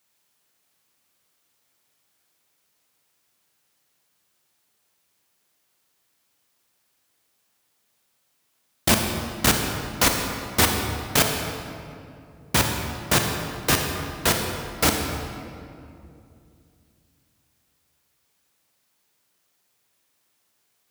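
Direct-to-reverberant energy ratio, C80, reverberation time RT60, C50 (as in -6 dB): 2.5 dB, 4.5 dB, 2.6 s, 3.5 dB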